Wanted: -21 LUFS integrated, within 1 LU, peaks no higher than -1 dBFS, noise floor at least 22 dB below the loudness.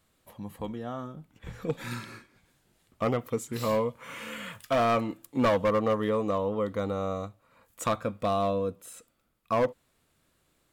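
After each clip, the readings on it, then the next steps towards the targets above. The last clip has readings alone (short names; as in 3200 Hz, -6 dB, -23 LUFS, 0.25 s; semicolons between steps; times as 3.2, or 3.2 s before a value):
clipped 1.3%; flat tops at -19.5 dBFS; loudness -30.0 LUFS; peak -19.5 dBFS; loudness target -21.0 LUFS
-> clip repair -19.5 dBFS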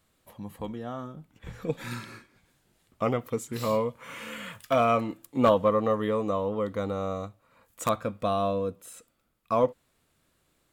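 clipped 0.0%; loudness -28.5 LUFS; peak -10.5 dBFS; loudness target -21.0 LUFS
-> gain +7.5 dB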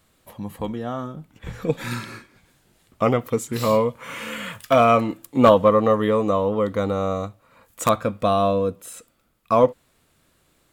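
loudness -21.0 LUFS; peak -3.0 dBFS; noise floor -64 dBFS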